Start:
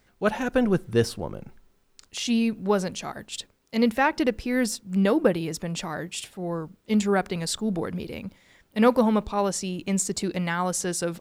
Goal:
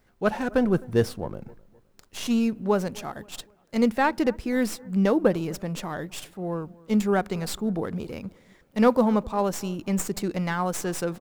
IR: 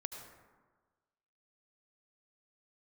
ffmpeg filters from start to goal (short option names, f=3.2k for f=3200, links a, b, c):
-filter_complex "[0:a]acrossover=split=1800[a][b];[a]aecho=1:1:259|518|777:0.0708|0.0283|0.0113[c];[b]aeval=exprs='max(val(0),0)':c=same[d];[c][d]amix=inputs=2:normalize=0"